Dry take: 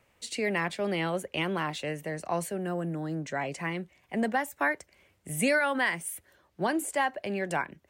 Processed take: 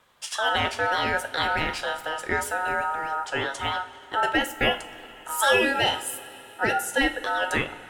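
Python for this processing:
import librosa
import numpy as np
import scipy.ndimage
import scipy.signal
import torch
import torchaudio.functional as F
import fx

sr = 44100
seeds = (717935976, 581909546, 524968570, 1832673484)

y = fx.notch_comb(x, sr, f0_hz=1100.0, at=(5.6, 7.01))
y = y * np.sin(2.0 * np.pi * 1100.0 * np.arange(len(y)) / sr)
y = fx.rev_double_slope(y, sr, seeds[0], early_s=0.33, late_s=3.8, knee_db=-18, drr_db=6.5)
y = y * 10.0 ** (7.0 / 20.0)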